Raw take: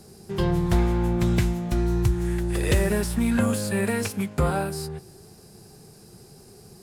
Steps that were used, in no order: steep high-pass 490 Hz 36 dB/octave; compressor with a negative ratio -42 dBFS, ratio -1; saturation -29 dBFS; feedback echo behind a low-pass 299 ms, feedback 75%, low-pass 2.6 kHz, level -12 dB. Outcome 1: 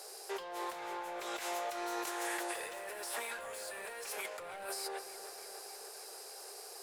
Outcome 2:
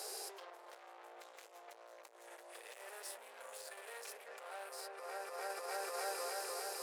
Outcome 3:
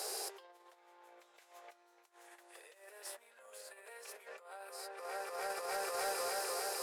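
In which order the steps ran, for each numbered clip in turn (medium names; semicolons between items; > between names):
steep high-pass > saturation > compressor with a negative ratio > feedback echo behind a low-pass; feedback echo behind a low-pass > saturation > compressor with a negative ratio > steep high-pass; feedback echo behind a low-pass > compressor with a negative ratio > steep high-pass > saturation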